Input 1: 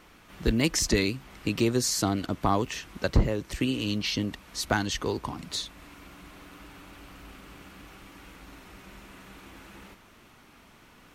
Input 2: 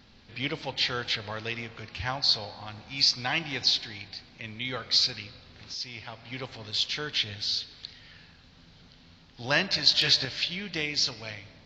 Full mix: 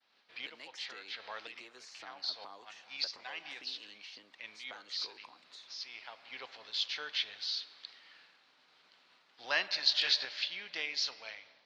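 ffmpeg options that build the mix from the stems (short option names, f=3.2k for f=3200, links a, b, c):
-filter_complex "[0:a]acrossover=split=690|3500|7000[a][b][c][d];[a]acompressor=threshold=-31dB:ratio=4[e];[b]acompressor=threshold=-34dB:ratio=4[f];[c]acompressor=threshold=-38dB:ratio=4[g];[d]acompressor=threshold=-50dB:ratio=4[h];[e][f][g][h]amix=inputs=4:normalize=0,volume=-16dB,asplit=2[i][j];[1:a]volume=-5.5dB[k];[j]apad=whole_len=514034[l];[k][l]sidechaincompress=threshold=-57dB:ratio=10:attack=32:release=128[m];[i][m]amix=inputs=2:normalize=0,agate=range=-33dB:threshold=-55dB:ratio=3:detection=peak,highpass=650,lowpass=5.4k"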